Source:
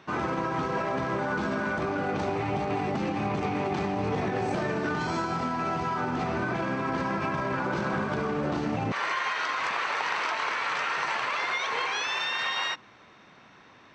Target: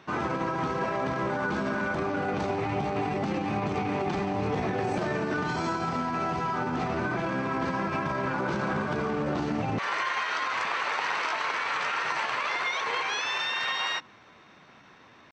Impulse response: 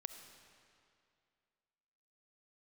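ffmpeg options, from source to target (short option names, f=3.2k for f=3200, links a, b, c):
-af "atempo=0.91"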